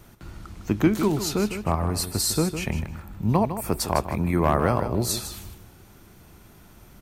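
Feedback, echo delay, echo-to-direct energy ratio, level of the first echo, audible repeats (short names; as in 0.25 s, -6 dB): 17%, 0.155 s, -10.0 dB, -10.0 dB, 2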